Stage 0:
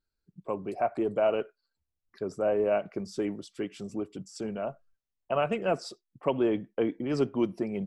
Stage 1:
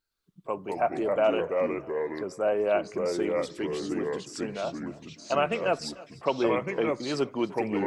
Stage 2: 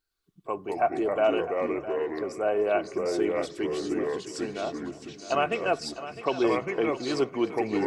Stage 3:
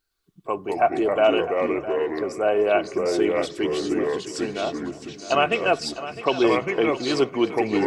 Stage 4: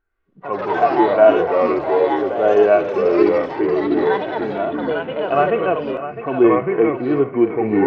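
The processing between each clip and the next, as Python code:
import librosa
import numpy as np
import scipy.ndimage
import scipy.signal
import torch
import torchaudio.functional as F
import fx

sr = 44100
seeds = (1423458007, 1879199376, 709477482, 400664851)

y1 = fx.echo_feedback(x, sr, ms=301, feedback_pct=46, wet_db=-21.0)
y1 = fx.echo_pitch(y1, sr, ms=114, semitones=-3, count=2, db_per_echo=-3.0)
y1 = fx.low_shelf(y1, sr, hz=420.0, db=-11.0)
y1 = F.gain(torch.from_numpy(y1), 5.0).numpy()
y2 = y1 + 0.35 * np.pad(y1, (int(2.7 * sr / 1000.0), 0))[:len(y1)]
y2 = fx.echo_feedback(y2, sr, ms=657, feedback_pct=29, wet_db=-13.5)
y3 = fx.dynamic_eq(y2, sr, hz=3100.0, q=1.9, threshold_db=-48.0, ratio=4.0, max_db=5)
y3 = F.gain(torch.from_numpy(y3), 5.0).numpy()
y4 = scipy.signal.sosfilt(scipy.signal.butter(4, 2000.0, 'lowpass', fs=sr, output='sos'), y3)
y4 = fx.echo_pitch(y4, sr, ms=82, semitones=5, count=3, db_per_echo=-6.0)
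y4 = fx.hpss(y4, sr, part='percussive', gain_db=-17)
y4 = F.gain(torch.from_numpy(y4), 8.5).numpy()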